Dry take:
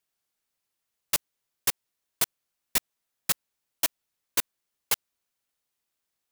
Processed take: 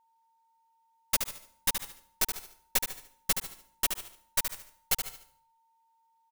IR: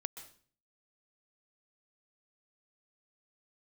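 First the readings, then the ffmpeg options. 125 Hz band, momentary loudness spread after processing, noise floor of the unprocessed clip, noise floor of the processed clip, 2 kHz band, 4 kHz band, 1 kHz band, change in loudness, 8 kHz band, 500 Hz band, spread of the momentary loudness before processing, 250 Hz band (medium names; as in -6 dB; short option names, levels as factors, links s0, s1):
+0.5 dB, 9 LU, -83 dBFS, -70 dBFS, -1.5 dB, -1.5 dB, -1.0 dB, -2.5 dB, -1.5 dB, -1.0 dB, 1 LU, -1.5 dB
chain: -filter_complex "[0:a]aecho=1:1:5.3:0.65,aeval=exprs='0.447*(cos(1*acos(clip(val(0)/0.447,-1,1)))-cos(1*PI/2))+0.0631*(cos(3*acos(clip(val(0)/0.447,-1,1)))-cos(3*PI/2))+0.224*(cos(6*acos(clip(val(0)/0.447,-1,1)))-cos(6*PI/2))+0.2*(cos(8*acos(clip(val(0)/0.447,-1,1)))-cos(8*PI/2))':c=same,aecho=1:1:73|146|219|292:0.447|0.156|0.0547|0.0192,asplit=2[s0][s1];[1:a]atrim=start_sample=2205[s2];[s1][s2]afir=irnorm=-1:irlink=0,volume=0.668[s3];[s0][s3]amix=inputs=2:normalize=0,aeval=exprs='val(0)+0.000891*sin(2*PI*910*n/s)':c=same,volume=0.473"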